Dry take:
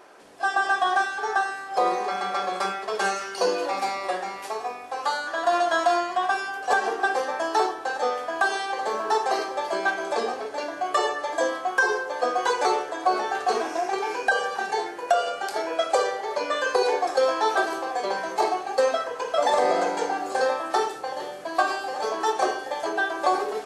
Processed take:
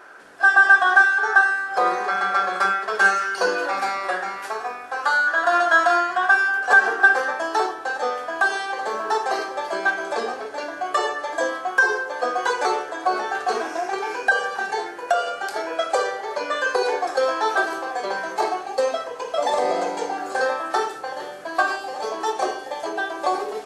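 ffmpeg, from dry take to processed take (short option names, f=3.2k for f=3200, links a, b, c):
-af "asetnsamples=n=441:p=0,asendcmd='7.33 equalizer g 5;18.66 equalizer g -3.5;20.18 equalizer g 6;21.76 equalizer g -2',equalizer=f=1.5k:t=o:w=0.53:g=14"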